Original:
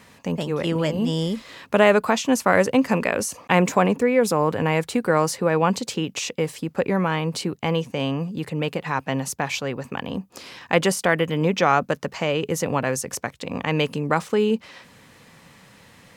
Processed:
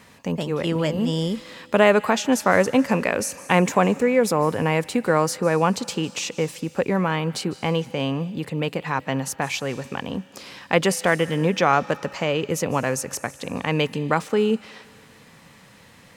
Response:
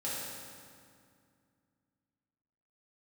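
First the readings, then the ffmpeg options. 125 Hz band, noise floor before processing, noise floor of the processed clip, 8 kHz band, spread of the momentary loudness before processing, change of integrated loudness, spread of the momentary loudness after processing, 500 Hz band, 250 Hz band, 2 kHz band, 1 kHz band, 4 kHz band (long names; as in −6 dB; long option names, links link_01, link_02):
0.0 dB, −51 dBFS, −50 dBFS, 0.0 dB, 10 LU, 0.0 dB, 10 LU, 0.0 dB, 0.0 dB, 0.0 dB, 0.0 dB, 0.0 dB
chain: -filter_complex "[0:a]asplit=2[link_01][link_02];[link_02]tiltshelf=frequency=1300:gain=-7.5[link_03];[1:a]atrim=start_sample=2205,adelay=150[link_04];[link_03][link_04]afir=irnorm=-1:irlink=0,volume=-24dB[link_05];[link_01][link_05]amix=inputs=2:normalize=0"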